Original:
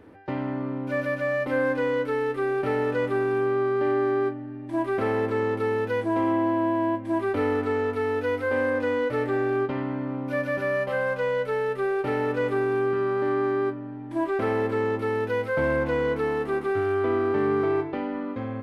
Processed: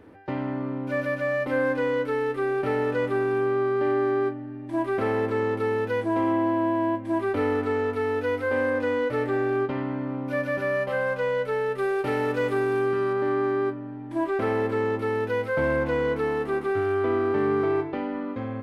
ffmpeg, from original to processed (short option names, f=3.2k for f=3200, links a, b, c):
-filter_complex "[0:a]asettb=1/sr,asplit=3[a][b][c];[a]atrim=end=11.784[d];[b]atrim=start=11.78:end=13.13,asetpts=PTS-STARTPTS,afade=t=in:d=0.004:c=qsin,afade=t=out:st=1.346:d=0.004:c=qsin,highshelf=f=3.8k:g=7.5[e];[c]atrim=start=13.126[f];[d][e]acrossfade=d=0.004:c1=hsin:c2=qsin[g];[g][f]acrossfade=d=0.004:c1=qsin:c2=hsin"